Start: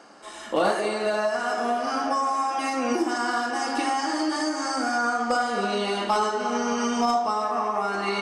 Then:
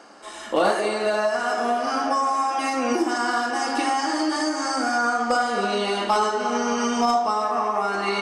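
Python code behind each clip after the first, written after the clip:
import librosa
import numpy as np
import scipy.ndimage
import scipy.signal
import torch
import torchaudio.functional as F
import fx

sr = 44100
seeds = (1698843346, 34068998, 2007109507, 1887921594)

y = fx.peak_eq(x, sr, hz=150.0, db=-4.5, octaves=0.77)
y = y * librosa.db_to_amplitude(2.5)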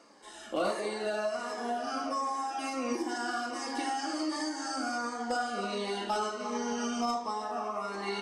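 y = fx.notch_cascade(x, sr, direction='falling', hz=1.4)
y = y * librosa.db_to_amplitude(-8.5)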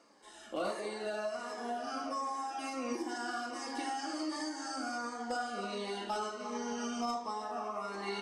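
y = fx.rider(x, sr, range_db=10, speed_s=2.0)
y = y * librosa.db_to_amplitude(-4.5)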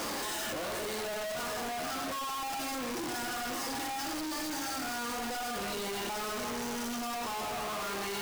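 y = np.sign(x) * np.sqrt(np.mean(np.square(x)))
y = y * librosa.db_to_amplitude(2.5)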